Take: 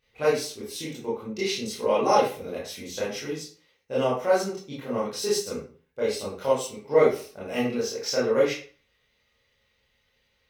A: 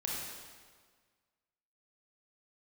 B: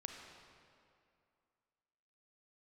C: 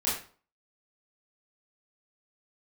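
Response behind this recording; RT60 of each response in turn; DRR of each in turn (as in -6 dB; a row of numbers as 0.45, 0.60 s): C; 1.6, 2.5, 0.40 s; -4.0, 2.5, -9.0 dB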